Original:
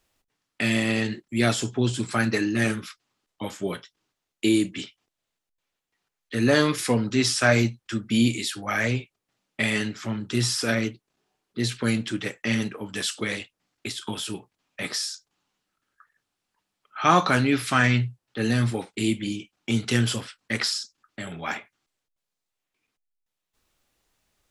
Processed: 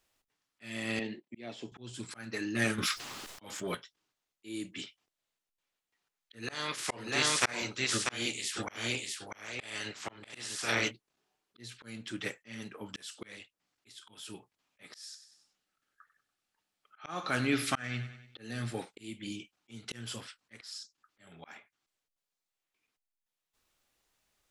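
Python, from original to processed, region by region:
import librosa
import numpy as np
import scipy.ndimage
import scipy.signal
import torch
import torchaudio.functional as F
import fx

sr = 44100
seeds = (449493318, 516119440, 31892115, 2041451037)

y = fx.chain(x, sr, fx.bandpass_edges(low_hz=200.0, high_hz=2700.0),
    fx.peak_eq(hz=1400.0, db=-14.5, octaves=0.67), at=(0.99, 1.72))
y = fx.chain(y, sr, fx.leveller(passes=1),
    fx.env_flatten(amount_pct=70), at=(2.78, 3.75))
y = fx.spec_clip(y, sr, under_db=18, at=(6.42, 10.9), fade=0.02)
y = fx.lowpass(y, sr, hz=10000.0, slope=24, at=(6.42, 10.9), fade=0.02)
y = fx.echo_single(y, sr, ms=642, db=-4.0, at=(6.42, 10.9), fade=0.02)
y = fx.chain(y, sr, fx.notch(hz=1000.0, q=7.3),
    fx.echo_feedback(ms=96, feedback_pct=42, wet_db=-16), at=(14.93, 18.83))
y = fx.low_shelf(y, sr, hz=400.0, db=-5.5)
y = fx.auto_swell(y, sr, attack_ms=506.0)
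y = F.gain(torch.from_numpy(y), -3.5).numpy()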